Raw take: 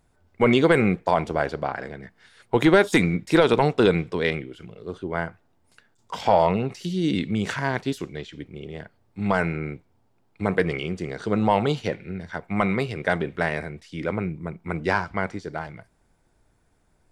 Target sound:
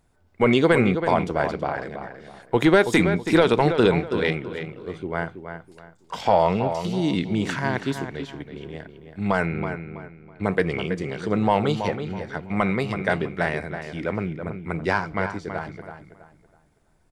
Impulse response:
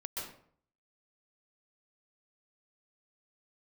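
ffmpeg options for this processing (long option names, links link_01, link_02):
-filter_complex "[0:a]asettb=1/sr,asplit=3[link_01][link_02][link_03];[link_01]atrim=end=9.464[link_04];[link_02]atrim=start=9.46:end=10.44,asetpts=PTS-STARTPTS,afade=type=in:duration=0.004:curve=qsin,afade=type=out:start_time=0.976:duration=0.004:curve=qsin,lowpass=4500[link_05];[link_03]atrim=start=10.436[link_06];[link_04][link_05]acrossfade=duration=0.004:curve1=hsin:curve2=qsin[link_07];[link_07][link_06]acrossfade=duration=0.004:curve1=qsin:curve2=hsin,asplit=2[link_08][link_09];[link_09]adelay=326,lowpass=frequency=3100:poles=1,volume=-8.5dB,asplit=2[link_10][link_11];[link_11]adelay=326,lowpass=frequency=3100:poles=1,volume=0.31,asplit=2[link_12][link_13];[link_13]adelay=326,lowpass=frequency=3100:poles=1,volume=0.31,asplit=2[link_14][link_15];[link_15]adelay=326,lowpass=frequency=3100:poles=1,volume=0.31[link_16];[link_10][link_12][link_14][link_16]amix=inputs=4:normalize=0[link_17];[link_08][link_17]amix=inputs=2:normalize=0"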